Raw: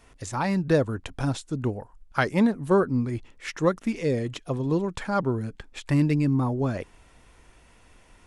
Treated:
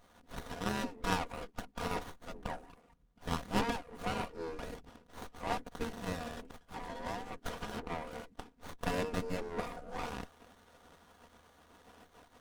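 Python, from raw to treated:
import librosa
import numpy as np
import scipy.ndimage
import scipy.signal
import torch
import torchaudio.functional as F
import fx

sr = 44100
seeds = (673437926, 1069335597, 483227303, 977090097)

y = fx.spec_gate(x, sr, threshold_db=-20, keep='weak')
y = fx.stretch_grains(y, sr, factor=1.5, grain_ms=25.0)
y = fx.running_max(y, sr, window=17)
y = y * 10.0 ** (6.5 / 20.0)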